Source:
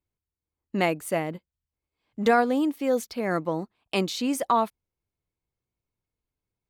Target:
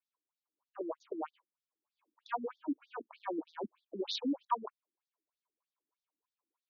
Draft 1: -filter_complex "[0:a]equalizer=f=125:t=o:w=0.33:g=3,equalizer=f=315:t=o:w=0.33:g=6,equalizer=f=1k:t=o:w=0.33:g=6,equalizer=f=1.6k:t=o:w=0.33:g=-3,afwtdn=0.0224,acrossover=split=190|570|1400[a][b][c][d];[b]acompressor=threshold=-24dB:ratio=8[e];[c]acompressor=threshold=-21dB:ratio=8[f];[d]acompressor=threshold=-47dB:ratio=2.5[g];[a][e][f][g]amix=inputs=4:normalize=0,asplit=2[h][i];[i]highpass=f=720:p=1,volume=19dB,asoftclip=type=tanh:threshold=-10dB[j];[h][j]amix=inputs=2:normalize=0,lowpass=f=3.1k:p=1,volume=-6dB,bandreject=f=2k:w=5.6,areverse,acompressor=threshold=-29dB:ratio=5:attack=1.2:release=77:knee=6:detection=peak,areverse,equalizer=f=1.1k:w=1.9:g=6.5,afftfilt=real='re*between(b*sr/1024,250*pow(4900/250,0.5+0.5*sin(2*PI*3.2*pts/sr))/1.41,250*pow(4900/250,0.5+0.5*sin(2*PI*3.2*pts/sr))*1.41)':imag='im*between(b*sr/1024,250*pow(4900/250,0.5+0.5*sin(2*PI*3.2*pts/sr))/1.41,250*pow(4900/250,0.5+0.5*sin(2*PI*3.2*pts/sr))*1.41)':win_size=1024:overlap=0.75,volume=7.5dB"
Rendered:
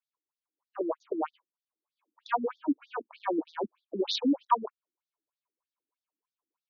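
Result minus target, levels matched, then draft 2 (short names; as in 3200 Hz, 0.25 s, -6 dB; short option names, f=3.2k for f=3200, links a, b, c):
compressor: peak gain reduction -8 dB
-filter_complex "[0:a]equalizer=f=125:t=o:w=0.33:g=3,equalizer=f=315:t=o:w=0.33:g=6,equalizer=f=1k:t=o:w=0.33:g=6,equalizer=f=1.6k:t=o:w=0.33:g=-3,afwtdn=0.0224,acrossover=split=190|570|1400[a][b][c][d];[b]acompressor=threshold=-24dB:ratio=8[e];[c]acompressor=threshold=-21dB:ratio=8[f];[d]acompressor=threshold=-47dB:ratio=2.5[g];[a][e][f][g]amix=inputs=4:normalize=0,asplit=2[h][i];[i]highpass=f=720:p=1,volume=19dB,asoftclip=type=tanh:threshold=-10dB[j];[h][j]amix=inputs=2:normalize=0,lowpass=f=3.1k:p=1,volume=-6dB,bandreject=f=2k:w=5.6,areverse,acompressor=threshold=-39dB:ratio=5:attack=1.2:release=77:knee=6:detection=peak,areverse,equalizer=f=1.1k:w=1.9:g=6.5,afftfilt=real='re*between(b*sr/1024,250*pow(4900/250,0.5+0.5*sin(2*PI*3.2*pts/sr))/1.41,250*pow(4900/250,0.5+0.5*sin(2*PI*3.2*pts/sr))*1.41)':imag='im*between(b*sr/1024,250*pow(4900/250,0.5+0.5*sin(2*PI*3.2*pts/sr))/1.41,250*pow(4900/250,0.5+0.5*sin(2*PI*3.2*pts/sr))*1.41)':win_size=1024:overlap=0.75,volume=7.5dB"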